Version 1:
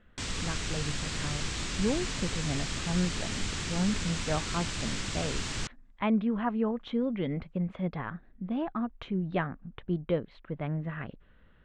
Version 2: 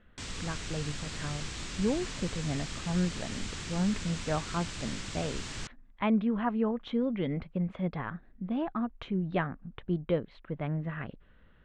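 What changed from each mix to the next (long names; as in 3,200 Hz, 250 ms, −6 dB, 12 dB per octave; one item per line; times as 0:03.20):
background −5.0 dB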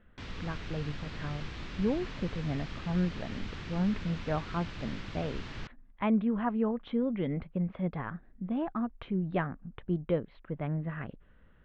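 master: add high-frequency loss of the air 250 metres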